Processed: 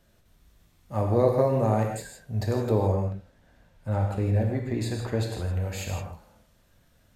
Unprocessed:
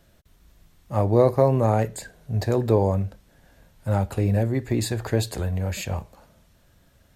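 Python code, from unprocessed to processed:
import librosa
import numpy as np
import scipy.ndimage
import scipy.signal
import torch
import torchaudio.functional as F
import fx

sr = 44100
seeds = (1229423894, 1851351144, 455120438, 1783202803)

y = fx.lowpass(x, sr, hz=4000.0, slope=6, at=(2.92, 5.53))
y = fx.rev_gated(y, sr, seeds[0], gate_ms=190, shape='flat', drr_db=1.5)
y = y * 10.0 ** (-5.5 / 20.0)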